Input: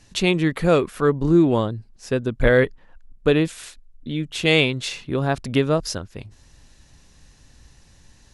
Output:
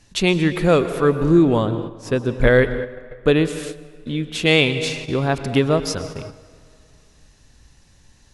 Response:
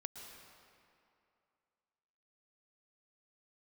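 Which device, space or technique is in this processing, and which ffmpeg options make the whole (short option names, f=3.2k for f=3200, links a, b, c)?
keyed gated reverb: -filter_complex "[0:a]asplit=3[a][b][c];[1:a]atrim=start_sample=2205[d];[b][d]afir=irnorm=-1:irlink=0[e];[c]apad=whole_len=367635[f];[e][f]sidechaingate=range=-8dB:threshold=-40dB:ratio=16:detection=peak,volume=3dB[g];[a][g]amix=inputs=2:normalize=0,volume=-3.5dB"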